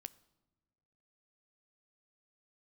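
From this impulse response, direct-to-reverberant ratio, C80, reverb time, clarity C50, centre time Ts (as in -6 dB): 14.5 dB, 22.5 dB, not exponential, 20.5 dB, 2 ms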